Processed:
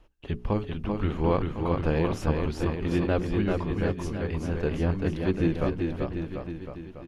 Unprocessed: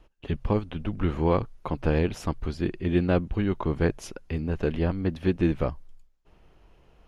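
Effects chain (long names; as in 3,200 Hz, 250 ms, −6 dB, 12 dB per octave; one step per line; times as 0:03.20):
mains-hum notches 60/120/180/240/300/360/420 Hz
0:03.53–0:04.25: tuned comb filter 72 Hz, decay 0.16 s, harmonics all, mix 70%
bouncing-ball delay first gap 390 ms, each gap 0.9×, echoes 5
level −1.5 dB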